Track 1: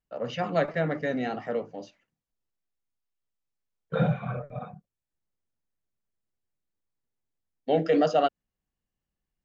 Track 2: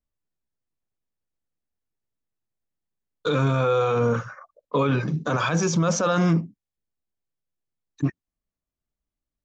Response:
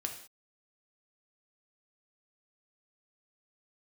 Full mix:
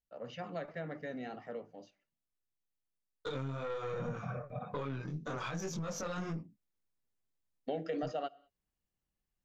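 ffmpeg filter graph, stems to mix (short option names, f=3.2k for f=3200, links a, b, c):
-filter_complex "[0:a]volume=-4dB,afade=t=in:st=4.04:d=0.24:silence=0.354813,asplit=2[a][b];[b]volume=-18.5dB[c];[1:a]flanger=delay=19.5:depth=3.4:speed=1.9,aeval=exprs='(tanh(8.91*val(0)+0.5)-tanh(0.5))/8.91':c=same,volume=-5.5dB[d];[2:a]atrim=start_sample=2205[e];[c][e]afir=irnorm=-1:irlink=0[f];[a][d][f]amix=inputs=3:normalize=0,acompressor=threshold=-36dB:ratio=4"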